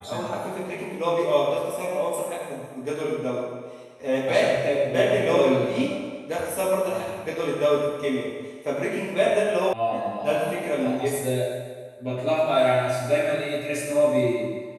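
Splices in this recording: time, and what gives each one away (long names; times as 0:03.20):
0:09.73: cut off before it has died away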